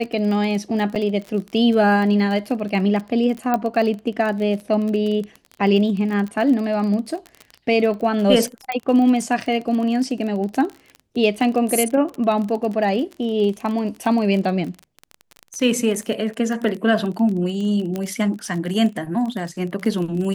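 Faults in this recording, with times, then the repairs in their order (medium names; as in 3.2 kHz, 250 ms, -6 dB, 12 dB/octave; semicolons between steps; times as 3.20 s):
crackle 29 per s -26 dBFS
0.95–0.96 s: dropout 6.7 ms
3.54 s: pop -8 dBFS
8.72 s: pop -12 dBFS
17.96 s: pop -13 dBFS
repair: de-click; interpolate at 0.95 s, 6.7 ms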